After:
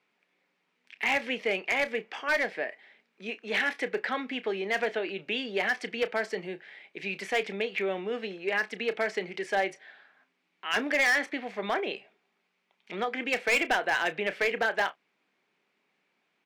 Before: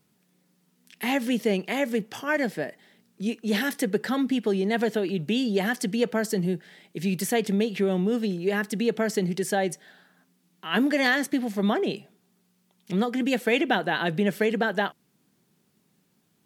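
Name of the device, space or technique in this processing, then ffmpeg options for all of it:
megaphone: -filter_complex "[0:a]highpass=540,lowpass=3k,equalizer=f=2.3k:t=o:w=0.45:g=9,asoftclip=type=hard:threshold=-20dB,asplit=2[a][b];[b]adelay=31,volume=-13.5dB[c];[a][c]amix=inputs=2:normalize=0"

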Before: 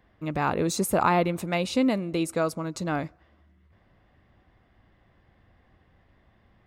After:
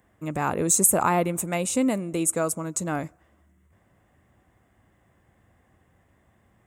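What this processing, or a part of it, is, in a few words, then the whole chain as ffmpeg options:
budget condenser microphone: -af "highpass=64,highshelf=f=5.9k:t=q:w=3:g=10"

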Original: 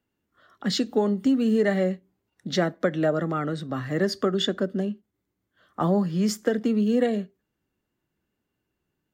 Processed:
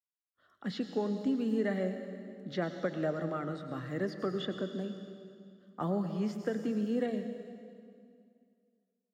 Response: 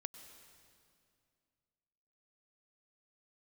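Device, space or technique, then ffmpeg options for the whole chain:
stairwell: -filter_complex "[0:a]agate=range=-33dB:threshold=-57dB:ratio=3:detection=peak[a];[1:a]atrim=start_sample=2205[b];[a][b]afir=irnorm=-1:irlink=0,acrossover=split=3500[c][d];[d]acompressor=threshold=-53dB:ratio=4:attack=1:release=60[e];[c][e]amix=inputs=2:normalize=0,volume=-6dB"

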